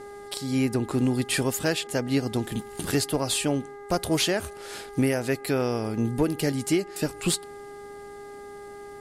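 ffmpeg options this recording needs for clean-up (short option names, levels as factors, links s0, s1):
-af "bandreject=f=406.4:t=h:w=4,bandreject=f=812.8:t=h:w=4,bandreject=f=1219.2:t=h:w=4,bandreject=f=1625.6:t=h:w=4,bandreject=f=2032:t=h:w=4"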